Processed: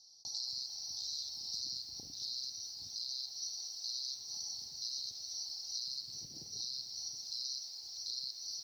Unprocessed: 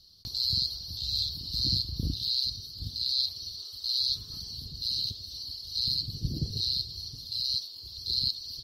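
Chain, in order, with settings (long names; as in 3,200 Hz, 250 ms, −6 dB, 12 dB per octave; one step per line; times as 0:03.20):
parametric band 1,300 Hz −8 dB 1.1 octaves
downward compressor 8 to 1, threshold −32 dBFS, peak gain reduction 9.5 dB
pair of resonant band-passes 2,200 Hz, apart 2.8 octaves
convolution reverb RT60 3.1 s, pre-delay 109 ms, DRR 18 dB
feedback echo at a low word length 223 ms, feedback 55%, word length 11 bits, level −12 dB
level +9.5 dB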